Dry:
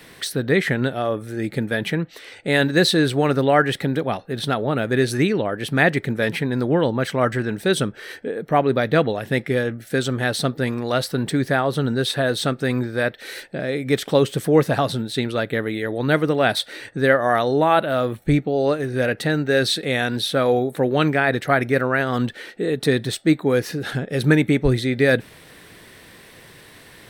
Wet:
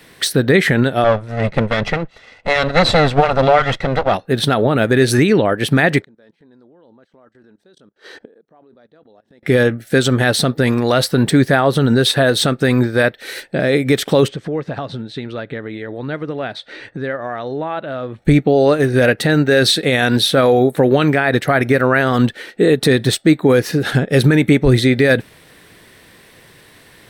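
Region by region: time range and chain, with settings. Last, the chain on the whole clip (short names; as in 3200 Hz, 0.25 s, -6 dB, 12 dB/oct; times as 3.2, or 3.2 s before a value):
1.04–4.14 minimum comb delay 1.5 ms + Bessel low-pass 3400 Hz
6.01–9.43 EQ curve 140 Hz 0 dB, 220 Hz +9 dB, 940 Hz +10 dB, 1600 Hz +6 dB, 2300 Hz 0 dB, 3900 Hz +8 dB, 6800 Hz +4 dB, 12000 Hz -8 dB + level quantiser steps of 20 dB + flipped gate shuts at -27 dBFS, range -28 dB
14.28–18.25 compressor 3:1, threshold -31 dBFS + air absorption 130 m
whole clip: maximiser +14 dB; upward expander 1.5:1, over -31 dBFS; gain -1.5 dB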